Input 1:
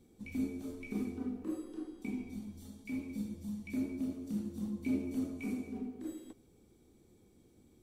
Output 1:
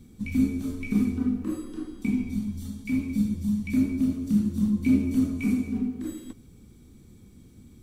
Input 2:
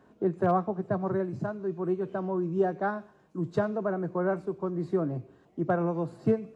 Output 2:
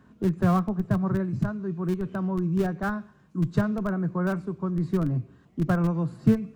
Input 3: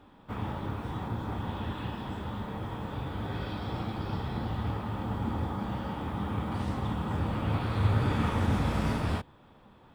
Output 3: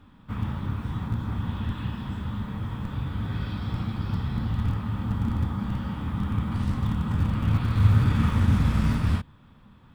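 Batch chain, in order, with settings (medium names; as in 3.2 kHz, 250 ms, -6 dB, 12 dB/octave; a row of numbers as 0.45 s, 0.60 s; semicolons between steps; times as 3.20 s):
bass shelf 290 Hz +7 dB; in parallel at -11.5 dB: Schmitt trigger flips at -19.5 dBFS; on the sum: high-order bell 520 Hz -8.5 dB; normalise loudness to -27 LUFS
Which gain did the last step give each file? +10.5 dB, +2.5 dB, +1.0 dB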